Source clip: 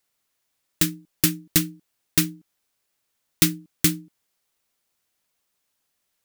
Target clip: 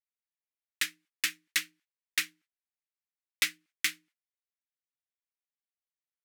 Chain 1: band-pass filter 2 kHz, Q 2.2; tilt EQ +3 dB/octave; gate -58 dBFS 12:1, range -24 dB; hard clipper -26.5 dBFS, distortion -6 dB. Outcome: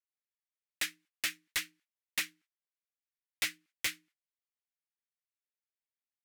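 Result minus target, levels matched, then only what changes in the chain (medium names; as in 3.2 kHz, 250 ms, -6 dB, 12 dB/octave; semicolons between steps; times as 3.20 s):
hard clipper: distortion +15 dB
change: hard clipper -16 dBFS, distortion -21 dB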